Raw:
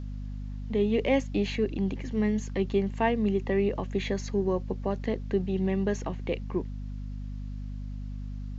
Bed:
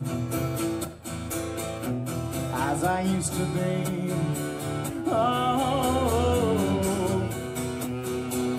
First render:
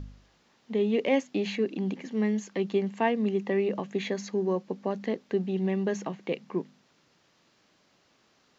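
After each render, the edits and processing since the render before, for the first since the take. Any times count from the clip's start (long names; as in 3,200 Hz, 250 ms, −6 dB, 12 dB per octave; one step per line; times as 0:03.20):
hum removal 50 Hz, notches 5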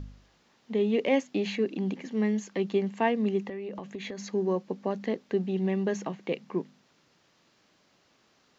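0:03.48–0:04.30: downward compressor 10 to 1, threshold −33 dBFS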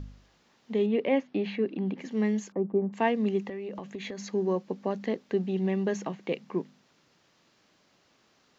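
0:00.86–0:01.98: high-frequency loss of the air 260 metres
0:02.52–0:02.93: low-pass filter 1,100 Hz 24 dB per octave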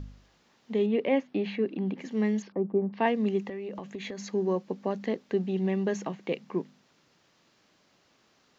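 0:02.42–0:03.06: Butterworth low-pass 5,300 Hz 72 dB per octave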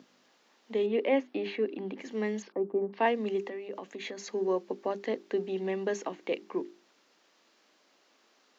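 high-pass filter 260 Hz 24 dB per octave
mains-hum notches 50/100/150/200/250/300/350/400 Hz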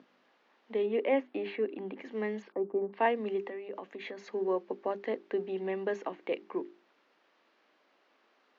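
low-pass filter 2,600 Hz 12 dB per octave
low-shelf EQ 170 Hz −10.5 dB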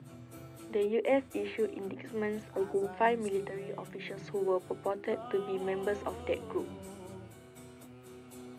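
mix in bed −21 dB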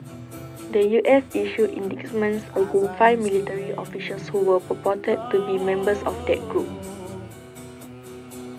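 level +11.5 dB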